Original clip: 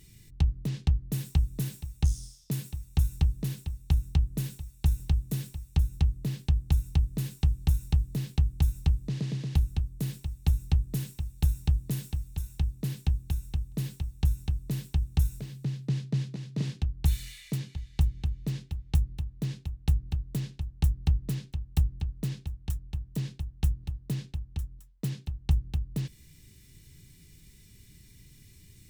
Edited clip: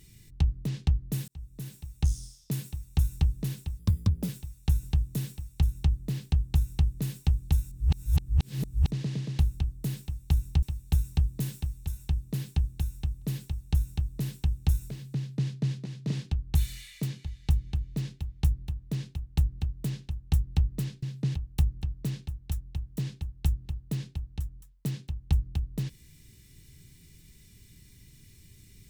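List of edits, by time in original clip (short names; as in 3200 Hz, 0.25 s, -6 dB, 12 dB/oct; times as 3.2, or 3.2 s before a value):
1.28–2.11 fade in
3.79–4.45 speed 133%
7.88–9.07 reverse
10.79–11.13 cut
15.68–16 copy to 21.53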